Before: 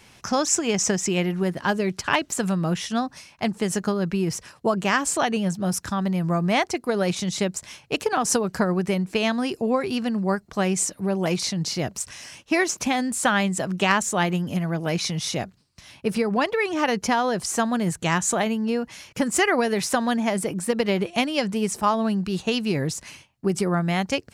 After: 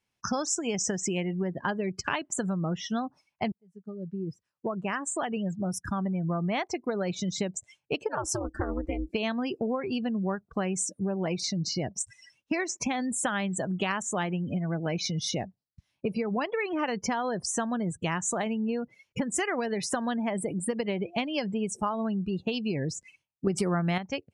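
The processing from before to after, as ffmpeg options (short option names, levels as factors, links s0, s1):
-filter_complex "[0:a]asplit=3[s0][s1][s2];[s0]afade=t=out:st=8.08:d=0.02[s3];[s1]aeval=exprs='val(0)*sin(2*PI*130*n/s)':c=same,afade=t=in:st=8.08:d=0.02,afade=t=out:st=9.08:d=0.02[s4];[s2]afade=t=in:st=9.08:d=0.02[s5];[s3][s4][s5]amix=inputs=3:normalize=0,asplit=4[s6][s7][s8][s9];[s6]atrim=end=3.52,asetpts=PTS-STARTPTS,afade=t=out:st=3.516:d=0.004:c=hsin[s10];[s7]atrim=start=3.52:end=23.472,asetpts=PTS-STARTPTS,afade=t=in:d=2.98[s11];[s8]atrim=start=23.468:end=23.982,asetpts=PTS-STARTPTS,volume=3.35[s12];[s9]atrim=start=23.978[s13];[s10][s11]concat=n=2:v=0:a=1[s14];[s14][s12]acrossfade=d=0.004:c1=hsin:c2=hsin[s15];[s15][s13]acrossfade=d=0.004:c1=hsin:c2=hsin,afftdn=nr=34:nf=-32,acompressor=threshold=0.0251:ratio=4,volume=1.5"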